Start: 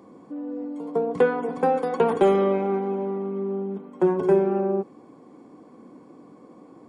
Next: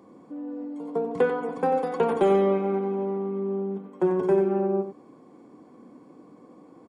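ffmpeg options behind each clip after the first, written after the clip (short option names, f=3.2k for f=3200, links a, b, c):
-af "aecho=1:1:92:0.376,volume=-3dB"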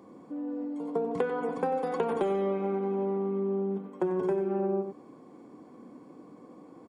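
-af "acompressor=threshold=-25dB:ratio=10"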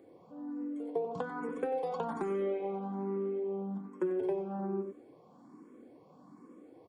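-filter_complex "[0:a]asplit=2[a][b];[b]afreqshift=1.2[c];[a][c]amix=inputs=2:normalize=1,volume=-2.5dB"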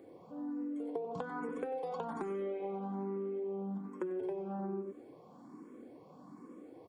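-af "acompressor=threshold=-39dB:ratio=4,volume=2.5dB"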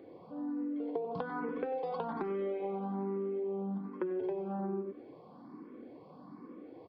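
-af "aresample=11025,aresample=44100,volume=2.5dB"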